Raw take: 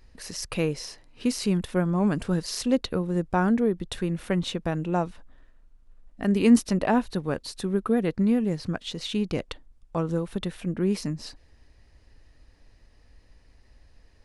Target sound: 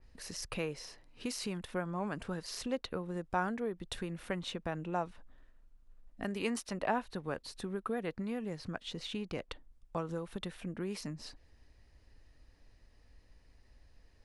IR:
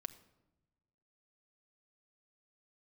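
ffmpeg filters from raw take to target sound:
-filter_complex "[0:a]acrossover=split=540|2700[a][b][c];[a]acompressor=threshold=-32dB:ratio=6[d];[d][b][c]amix=inputs=3:normalize=0,adynamicequalizer=threshold=0.00355:dfrequency=3400:dqfactor=0.7:tfrequency=3400:tqfactor=0.7:attack=5:release=100:ratio=0.375:range=3.5:mode=cutabove:tftype=highshelf,volume=-6dB"

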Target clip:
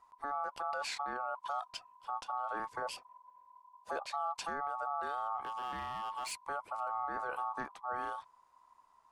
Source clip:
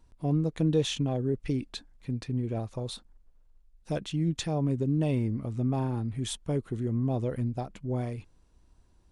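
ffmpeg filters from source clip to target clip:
-filter_complex "[0:a]aeval=exprs='val(0)*sin(2*PI*1000*n/s)':c=same,asettb=1/sr,asplit=3[a][b][c];[a]atrim=end=2.824[d];[b]atrim=start=2.82:end=4.12,asetpts=PTS-STARTPTS,afade=t=in:d=0.004:c=qsin,afade=t=out:st=1.296:d=0.004:c=qsin,equalizer=f=590:w=1.9:g=11.5[e];[c]atrim=start=4.116[f];[d][e]acrossfade=d=0.004:c1=hsin:c2=qsin[g];[g][f]acrossfade=d=0.004:c1=qsin:c2=hsin,alimiter=level_in=2dB:limit=-24dB:level=0:latency=1:release=27,volume=-2dB,asettb=1/sr,asplit=3[h][i][j];[h]atrim=end=5.444[k];[i]atrim=start=5.44:end=6.32,asetpts=PTS-STARTPTS,afade=t=in:d=0.004:c=qsin,afade=t=out:st=0.876:d=0.004:c=qsin,asoftclip=type=hard:threshold=-33dB[l];[j]atrim=start=6.316[m];[k][l]acrossfade=d=0.004:c1=hsin:c2=qsin[n];[n][m]acrossfade=d=0.004:c1=qsin:c2=hsin,asettb=1/sr,asplit=3[o][p][q];[o]atrim=end=7.004[r];[p]atrim=start=7:end=7.62,asetpts=PTS-STARTPTS,afade=t=in:d=0.004:c=qsin,afade=t=out:st=0.616:d=0.004:c=qsin,asplit=2[s][t];[t]adelay=40,volume=-13.5dB[u];[s][u]amix=inputs=2:normalize=0,atrim=end_sample=27342[v];[q]atrim=start=7.616[w];[r][v]acrossfade=d=0.004:c1=hsin:c2=qsin[x];[x][w]acrossfade=d=0.004:c1=qsin:c2=hsin,volume=-2dB"

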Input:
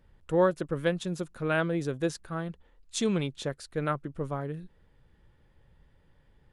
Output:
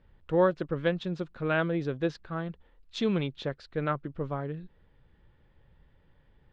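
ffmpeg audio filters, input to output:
-af "lowpass=f=4.3k:w=0.5412,lowpass=f=4.3k:w=1.3066"

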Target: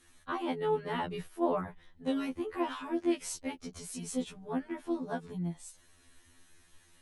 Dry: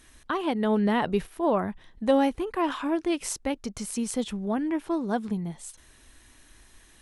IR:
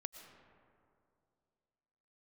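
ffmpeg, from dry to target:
-filter_complex "[0:a]asplit=2[a][b];[b]asetrate=33038,aresample=44100,atempo=1.33484,volume=-13dB[c];[a][c]amix=inputs=2:normalize=0,afftfilt=real='re*2*eq(mod(b,4),0)':imag='im*2*eq(mod(b,4),0)':win_size=2048:overlap=0.75,volume=-5dB"

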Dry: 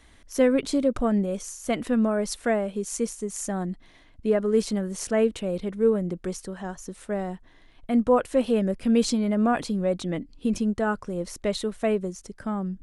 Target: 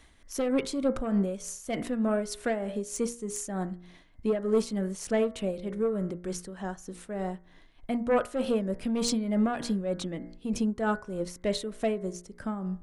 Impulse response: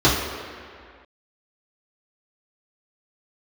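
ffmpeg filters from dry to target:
-af "aeval=exprs='0.335*sin(PI/2*1.58*val(0)/0.335)':c=same,bandreject=f=59.1:t=h:w=4,bandreject=f=118.2:t=h:w=4,bandreject=f=177.3:t=h:w=4,bandreject=f=236.4:t=h:w=4,bandreject=f=295.5:t=h:w=4,bandreject=f=354.6:t=h:w=4,bandreject=f=413.7:t=h:w=4,bandreject=f=472.8:t=h:w=4,bandreject=f=531.9:t=h:w=4,bandreject=f=591:t=h:w=4,bandreject=f=650.1:t=h:w=4,bandreject=f=709.2:t=h:w=4,bandreject=f=768.3:t=h:w=4,bandreject=f=827.4:t=h:w=4,bandreject=f=886.5:t=h:w=4,bandreject=f=945.6:t=h:w=4,bandreject=f=1.0047k:t=h:w=4,bandreject=f=1.0638k:t=h:w=4,bandreject=f=1.1229k:t=h:w=4,bandreject=f=1.182k:t=h:w=4,bandreject=f=1.2411k:t=h:w=4,bandreject=f=1.3002k:t=h:w=4,bandreject=f=1.3593k:t=h:w=4,bandreject=f=1.4184k:t=h:w=4,bandreject=f=1.4775k:t=h:w=4,bandreject=f=1.5366k:t=h:w=4,bandreject=f=1.5957k:t=h:w=4,bandreject=f=1.6548k:t=h:w=4,bandreject=f=1.7139k:t=h:w=4,bandreject=f=1.773k:t=h:w=4,bandreject=f=1.8321k:t=h:w=4,bandreject=f=1.8912k:t=h:w=4,bandreject=f=1.9503k:t=h:w=4,bandreject=f=2.0094k:t=h:w=4,bandreject=f=2.0685k:t=h:w=4,bandreject=f=2.1276k:t=h:w=4,bandreject=f=2.1867k:t=h:w=4,tremolo=f=3.3:d=0.55,volume=-8dB"

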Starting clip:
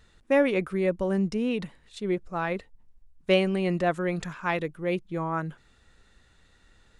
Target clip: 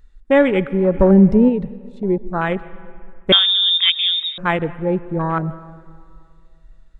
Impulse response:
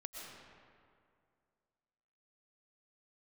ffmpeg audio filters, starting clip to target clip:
-filter_complex "[0:a]lowshelf=f=110:g=11.5,acrossover=split=2800[a][b];[a]crystalizer=i=4.5:c=0[c];[b]acompressor=threshold=-56dB:ratio=6[d];[c][d]amix=inputs=2:normalize=0,afwtdn=0.0316,equalizer=f=2.9k:w=1.5:g=-3.5,asplit=2[e][f];[1:a]atrim=start_sample=2205[g];[f][g]afir=irnorm=-1:irlink=0,volume=-11dB[h];[e][h]amix=inputs=2:normalize=0,asplit=3[i][j][k];[i]afade=t=out:st=0.93:d=0.02[l];[j]acontrast=56,afade=t=in:st=0.93:d=0.02,afade=t=out:st=1.48:d=0.02[m];[k]afade=t=in:st=1.48:d=0.02[n];[l][m][n]amix=inputs=3:normalize=0,asettb=1/sr,asplit=3[o][p][q];[o]atrim=end=3.324[r];[p]atrim=start=3.32:end=4.38,asetpts=PTS-STARTPTS,afade=t=in:d=0.004:c=qsin,afade=t=out:st=1.056:d=0.004:c=qsin,lowpass=f=3.2k:t=q:w=0.5098,lowpass=f=3.2k:t=q:w=0.6013,lowpass=f=3.2k:t=q:w=0.9,lowpass=f=3.2k:t=q:w=2.563,afreqshift=-3800[s];[q]atrim=start=4.376[t];[r][s]acrossfade=d=0.004:c1=hsin:c2=qsin[u];[u][t]acrossfade=d=0.004:c1=qsin:c2=hsin,volume=6dB"

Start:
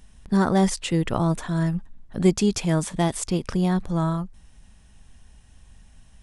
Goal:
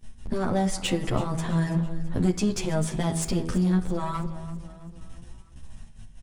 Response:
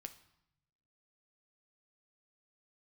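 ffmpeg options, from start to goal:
-filter_complex "[0:a]agate=range=-14dB:threshold=-47dB:ratio=16:detection=peak,lowshelf=f=460:g=4.5,bandreject=f=81.65:t=h:w=4,bandreject=f=163.3:t=h:w=4,bandreject=f=244.95:t=h:w=4,bandreject=f=326.6:t=h:w=4,bandreject=f=408.25:t=h:w=4,bandreject=f=489.9:t=h:w=4,bandreject=f=571.55:t=h:w=4,bandreject=f=653.2:t=h:w=4,bandreject=f=734.85:t=h:w=4,bandreject=f=816.5:t=h:w=4,bandreject=f=898.15:t=h:w=4,bandreject=f=979.8:t=h:w=4,bandreject=f=1.06145k:t=h:w=4,bandreject=f=1.1431k:t=h:w=4,bandreject=f=1.22475k:t=h:w=4,bandreject=f=1.3064k:t=h:w=4,bandreject=f=1.38805k:t=h:w=4,bandreject=f=1.4697k:t=h:w=4,bandreject=f=1.55135k:t=h:w=4,bandreject=f=1.633k:t=h:w=4,bandreject=f=1.71465k:t=h:w=4,bandreject=f=1.7963k:t=h:w=4,bandreject=f=1.87795k:t=h:w=4,bandreject=f=1.9596k:t=h:w=4,bandreject=f=2.04125k:t=h:w=4,bandreject=f=2.1229k:t=h:w=4,bandreject=f=2.20455k:t=h:w=4,bandreject=f=2.2862k:t=h:w=4,acompressor=threshold=-28dB:ratio=3,aeval=exprs='clip(val(0),-1,0.0335)':c=same,aecho=1:1:330|660|990|1320|1650:0.158|0.0808|0.0412|0.021|0.0107,asplit=2[a][b];[1:a]atrim=start_sample=2205[c];[b][c]afir=irnorm=-1:irlink=0,volume=9dB[d];[a][d]amix=inputs=2:normalize=0,asplit=2[e][f];[f]adelay=10.7,afreqshift=0.69[g];[e][g]amix=inputs=2:normalize=1"

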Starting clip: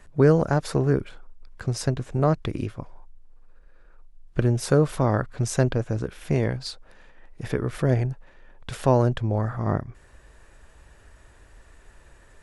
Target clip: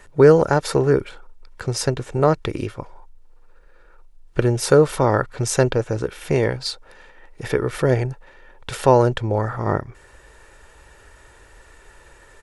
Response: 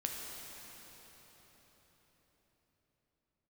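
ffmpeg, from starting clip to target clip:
-af "lowshelf=f=190:g=-9,aecho=1:1:2.2:0.34,volume=7dB"

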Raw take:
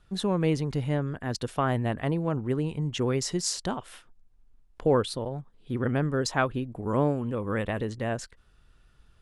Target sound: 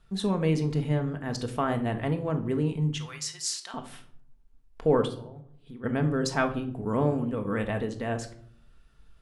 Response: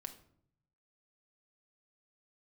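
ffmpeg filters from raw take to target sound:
-filter_complex "[0:a]asettb=1/sr,asplit=3[a][b][c];[a]atrim=end=2.984[d];[b]atrim=start=2.98:end=3.74,asetpts=PTS-STARTPTS,afade=t=in:d=0.004:c=qsin,afade=t=out:st=0.756:d=0.004:c=qsin,highpass=1.5k[e];[c]atrim=start=3.736[f];[d][e]acrossfade=d=0.004:c1=hsin:c2=qsin[g];[g][f]acrossfade=d=0.004:c1=qsin:c2=hsin,asplit=3[h][i][j];[h]afade=t=out:st=5.06:d=0.02[k];[i]acompressor=threshold=-44dB:ratio=4,afade=t=in:st=5.06:d=0.02,afade=t=out:st=5.83:d=0.02[l];[j]afade=t=in:st=5.83:d=0.02[m];[k][l][m]amix=inputs=3:normalize=0[n];[1:a]atrim=start_sample=2205,asetrate=48510,aresample=44100[o];[n][o]afir=irnorm=-1:irlink=0,volume=4dB"

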